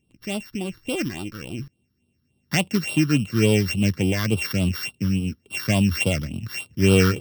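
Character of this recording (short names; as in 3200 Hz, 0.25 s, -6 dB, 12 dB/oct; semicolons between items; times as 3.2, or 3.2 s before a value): a buzz of ramps at a fixed pitch in blocks of 16 samples; phasing stages 6, 3.5 Hz, lowest notch 670–1800 Hz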